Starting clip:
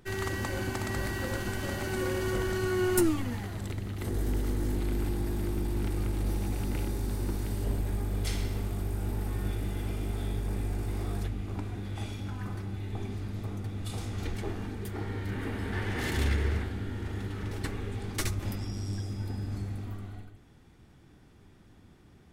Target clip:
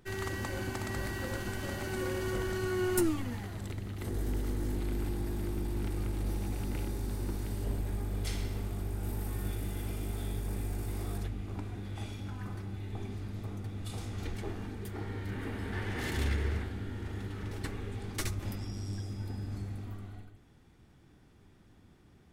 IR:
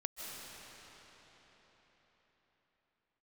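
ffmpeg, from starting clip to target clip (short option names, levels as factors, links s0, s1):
-filter_complex "[0:a]asettb=1/sr,asplit=3[s0][s1][s2];[s0]atrim=end=9.034[s3];[s1]atrim=start=9.03:end=11.18,asetpts=PTS-STARTPTS,afade=t=in:d=0.004:c=qsin,afade=t=out:st=2.146:d=0.004:c=qsin,highshelf=f=7600:g=9.5[s4];[s2]atrim=start=11.176[s5];[s3][s4]acrossfade=d=0.004:c1=hsin:c2=qsin[s6];[s6][s5]acrossfade=d=0.004:c1=qsin:c2=hsin,volume=0.668"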